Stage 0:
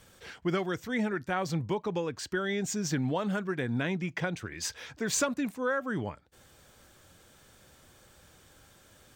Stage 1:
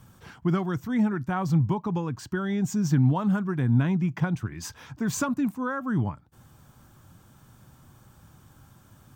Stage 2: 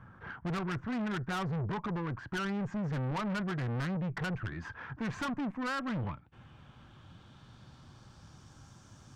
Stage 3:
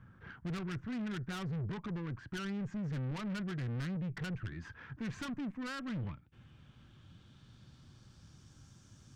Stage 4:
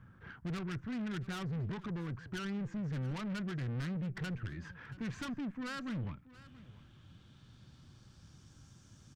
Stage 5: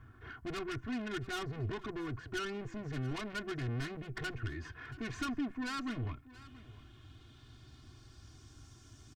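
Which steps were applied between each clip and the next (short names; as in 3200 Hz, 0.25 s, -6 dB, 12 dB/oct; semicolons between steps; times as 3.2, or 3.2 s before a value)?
graphic EQ 125/250/500/1000/2000/4000/8000 Hz +10/+4/-10/+6/-8/-7/-5 dB; gain +3 dB
low-pass sweep 1600 Hz -> 5900 Hz, 4.86–8.65; tube stage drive 32 dB, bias 0.35
bell 860 Hz -10 dB 1.6 oct; gain -2.5 dB
echo 0.679 s -18.5 dB
comb 2.8 ms, depth 95%; gain +1 dB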